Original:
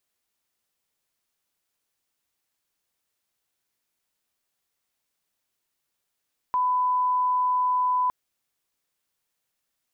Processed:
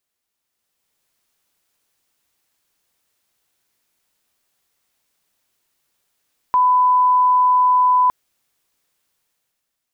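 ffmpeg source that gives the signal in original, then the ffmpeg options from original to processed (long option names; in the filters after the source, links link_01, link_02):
-f lavfi -i "sine=frequency=1000:duration=1.56:sample_rate=44100,volume=-1.94dB"
-af "dynaudnorm=framelen=170:gausssize=9:maxgain=9dB"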